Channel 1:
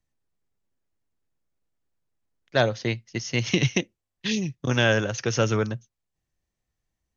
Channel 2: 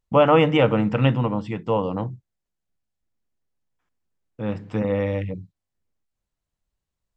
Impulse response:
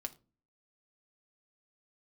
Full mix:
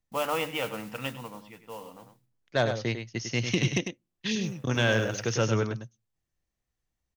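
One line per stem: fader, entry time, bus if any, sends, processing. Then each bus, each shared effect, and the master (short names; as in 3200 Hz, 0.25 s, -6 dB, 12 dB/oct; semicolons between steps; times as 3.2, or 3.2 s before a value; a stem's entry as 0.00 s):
-4.0 dB, 0.00 s, send -18 dB, echo send -7 dB, soft clip -9 dBFS, distortion -22 dB
-14.5 dB, 0.00 s, send -5.5 dB, echo send -12.5 dB, low-pass opened by the level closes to 2000 Hz, open at -13 dBFS; tilt +3.5 dB/oct; modulation noise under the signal 14 dB; auto duck -19 dB, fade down 1.40 s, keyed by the first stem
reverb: on, RT60 0.35 s, pre-delay 4 ms
echo: echo 0.1 s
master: dry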